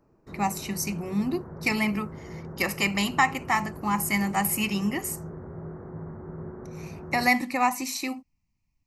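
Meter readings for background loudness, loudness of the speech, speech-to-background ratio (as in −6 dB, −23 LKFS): −40.5 LKFS, −26.5 LKFS, 14.0 dB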